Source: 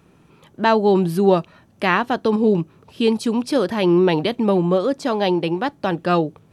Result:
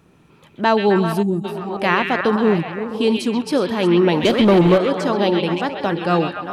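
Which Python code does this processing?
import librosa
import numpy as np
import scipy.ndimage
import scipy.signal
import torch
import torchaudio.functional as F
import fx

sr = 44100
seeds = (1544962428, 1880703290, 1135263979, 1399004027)

y = fx.reverse_delay(x, sr, ms=442, wet_db=-11)
y = fx.leveller(y, sr, passes=2, at=(4.23, 4.78))
y = fx.echo_stepped(y, sr, ms=131, hz=2800.0, octaves=-0.7, feedback_pct=70, wet_db=-1)
y = fx.spec_box(y, sr, start_s=1.22, length_s=0.22, low_hz=370.0, high_hz=6600.0, gain_db=-24)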